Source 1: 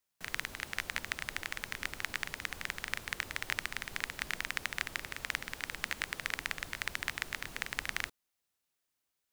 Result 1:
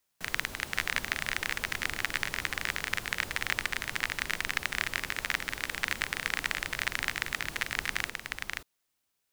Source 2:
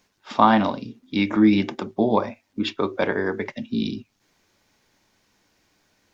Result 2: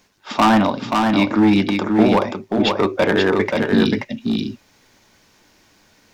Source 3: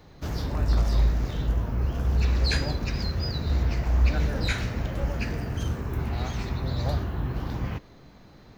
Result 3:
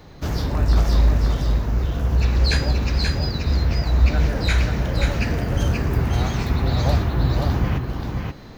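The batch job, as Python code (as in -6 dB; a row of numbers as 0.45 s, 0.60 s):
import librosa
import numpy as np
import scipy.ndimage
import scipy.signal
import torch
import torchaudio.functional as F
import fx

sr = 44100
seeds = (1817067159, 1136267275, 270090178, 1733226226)

p1 = fx.rider(x, sr, range_db=5, speed_s=2.0)
p2 = np.clip(10.0 ** (14.0 / 20.0) * p1, -1.0, 1.0) / 10.0 ** (14.0 / 20.0)
p3 = p2 + fx.echo_single(p2, sr, ms=531, db=-4.0, dry=0)
y = p3 * 10.0 ** (4.5 / 20.0)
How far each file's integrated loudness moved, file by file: +5.5 LU, +5.0 LU, +6.5 LU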